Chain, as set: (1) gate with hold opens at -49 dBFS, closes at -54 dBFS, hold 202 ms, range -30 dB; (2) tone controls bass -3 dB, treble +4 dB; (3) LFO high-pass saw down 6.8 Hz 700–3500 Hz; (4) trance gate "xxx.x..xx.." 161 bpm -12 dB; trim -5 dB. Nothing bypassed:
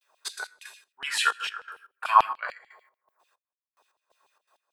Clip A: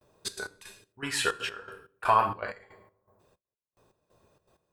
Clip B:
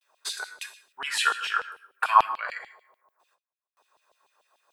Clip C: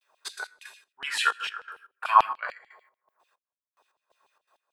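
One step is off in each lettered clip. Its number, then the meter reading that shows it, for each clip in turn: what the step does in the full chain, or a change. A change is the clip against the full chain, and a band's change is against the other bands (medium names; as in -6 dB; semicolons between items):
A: 3, 500 Hz band +10.0 dB; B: 4, momentary loudness spread change +1 LU; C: 2, momentary loudness spread change +1 LU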